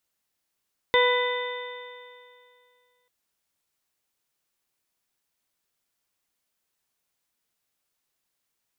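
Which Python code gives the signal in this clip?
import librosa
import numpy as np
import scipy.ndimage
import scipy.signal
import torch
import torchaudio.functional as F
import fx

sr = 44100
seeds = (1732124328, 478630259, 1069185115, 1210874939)

y = fx.additive_stiff(sr, length_s=2.14, hz=492.0, level_db=-19.0, upper_db=(-3, -13, -2.0, -20.0, -18, -6), decay_s=2.35, stiffness=0.0017)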